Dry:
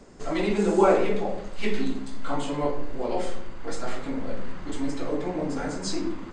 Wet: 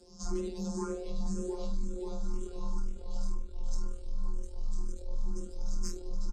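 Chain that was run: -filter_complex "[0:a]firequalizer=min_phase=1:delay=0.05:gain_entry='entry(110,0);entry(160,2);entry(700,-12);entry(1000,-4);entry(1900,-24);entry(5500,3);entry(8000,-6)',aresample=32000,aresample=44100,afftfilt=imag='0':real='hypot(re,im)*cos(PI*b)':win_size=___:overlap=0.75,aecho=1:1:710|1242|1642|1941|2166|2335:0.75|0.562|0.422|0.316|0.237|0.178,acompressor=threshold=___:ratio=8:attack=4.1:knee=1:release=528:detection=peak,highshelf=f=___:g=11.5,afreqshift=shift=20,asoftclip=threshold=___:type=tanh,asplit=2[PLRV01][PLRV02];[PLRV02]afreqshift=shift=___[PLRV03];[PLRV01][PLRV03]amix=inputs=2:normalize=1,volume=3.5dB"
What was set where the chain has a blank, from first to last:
1024, -28dB, 3700, -24.5dB, 2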